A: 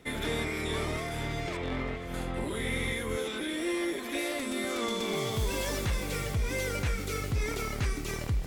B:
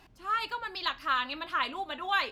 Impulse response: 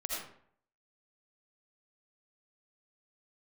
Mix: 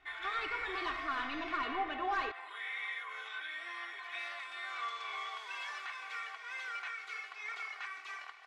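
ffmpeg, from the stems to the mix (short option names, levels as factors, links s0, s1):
-filter_complex "[0:a]highpass=f=990:w=0.5412,highpass=f=990:w=1.3066,volume=0.75[s0];[1:a]agate=range=0.224:threshold=0.00447:ratio=16:detection=peak,asoftclip=type=tanh:threshold=0.0266,volume=0.596,asplit=2[s1][s2];[s2]volume=0.501[s3];[2:a]atrim=start_sample=2205[s4];[s3][s4]afir=irnorm=-1:irlink=0[s5];[s0][s1][s5]amix=inputs=3:normalize=0,lowpass=2300,aecho=1:1:2.7:0.8"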